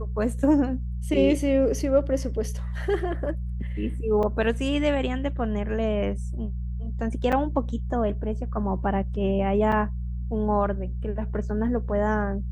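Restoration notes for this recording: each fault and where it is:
hum 60 Hz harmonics 3 -30 dBFS
4.23 gap 4.9 ms
7.32–7.33 gap 6.3 ms
9.72 gap 5 ms

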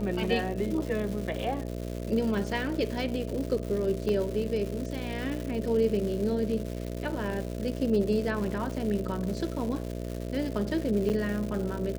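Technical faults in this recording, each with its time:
buzz 60 Hz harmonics 11 -35 dBFS
crackle 290/s -34 dBFS
4.09 gap 2.4 ms
11.09–11.1 gap 8.9 ms

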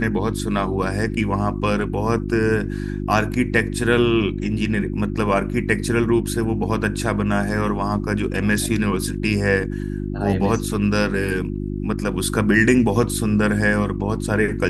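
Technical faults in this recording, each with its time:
hum 50 Hz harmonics 7 -26 dBFS

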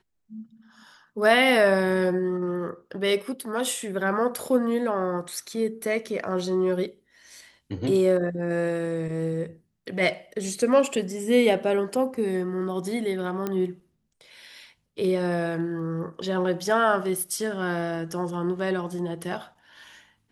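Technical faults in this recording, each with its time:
13.47 pop -15 dBFS

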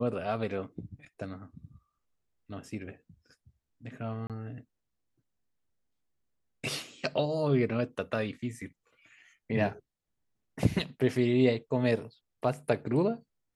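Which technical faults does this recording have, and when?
4.27–4.3 gap 27 ms

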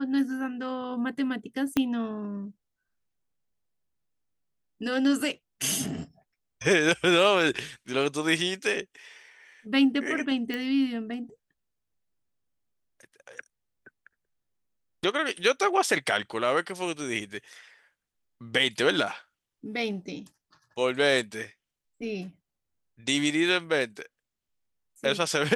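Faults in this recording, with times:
1.77 pop -11 dBFS
10.54 pop -19 dBFS

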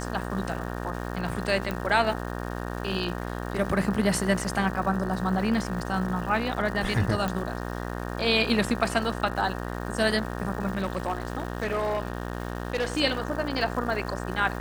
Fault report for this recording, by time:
buzz 60 Hz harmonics 31 -33 dBFS
crackle 480/s -37 dBFS
1.71 pop
7.28 pop -16 dBFS
10.73–13.01 clipped -22.5 dBFS

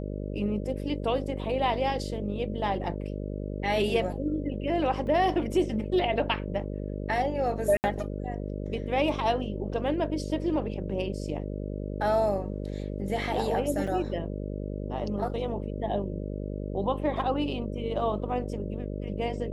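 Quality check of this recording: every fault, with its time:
buzz 50 Hz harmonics 12 -34 dBFS
5.07 gap 2 ms
7.77–7.84 gap 69 ms
13.87–13.88 gap 5.2 ms

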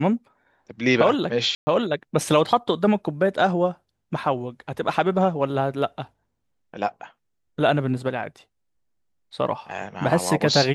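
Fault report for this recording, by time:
1.55–1.67 gap 0.12 s

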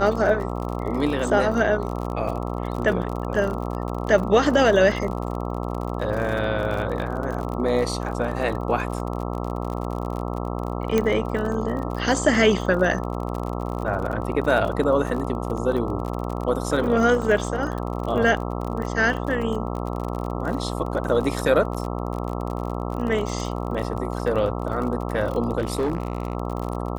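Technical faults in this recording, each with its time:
buzz 60 Hz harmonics 22 -28 dBFS
crackle 41/s -29 dBFS
10.98 pop -8 dBFS
17.22 gap 2.4 ms
25.58–26.35 clipped -19 dBFS

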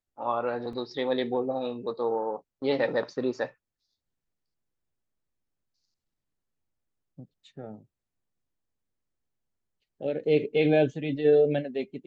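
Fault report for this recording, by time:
0.73 gap 2.5 ms

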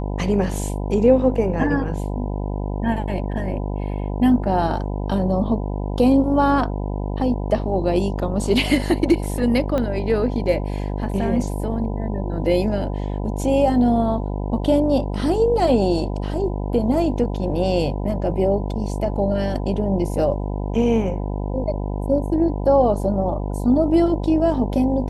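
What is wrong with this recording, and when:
buzz 50 Hz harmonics 20 -25 dBFS
9.78 pop -12 dBFS

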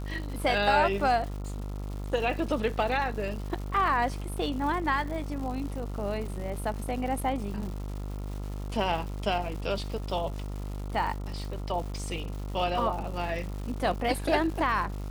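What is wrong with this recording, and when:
buzz 50 Hz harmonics 28 -35 dBFS
crackle 310/s -38 dBFS

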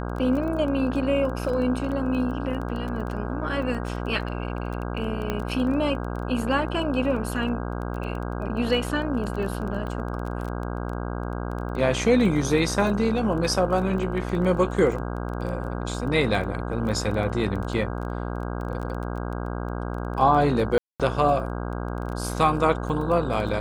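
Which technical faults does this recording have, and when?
buzz 60 Hz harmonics 27 -30 dBFS
crackle 15/s -31 dBFS
5.3 pop -13 dBFS
20.78–21 gap 0.217 s

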